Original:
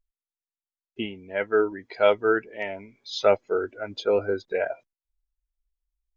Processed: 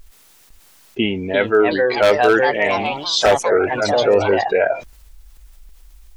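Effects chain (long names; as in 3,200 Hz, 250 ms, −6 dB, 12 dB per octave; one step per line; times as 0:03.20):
delay with pitch and tempo change per echo 504 ms, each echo +3 semitones, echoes 3, each echo −6 dB
wave folding −12 dBFS
envelope flattener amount 50%
level +5.5 dB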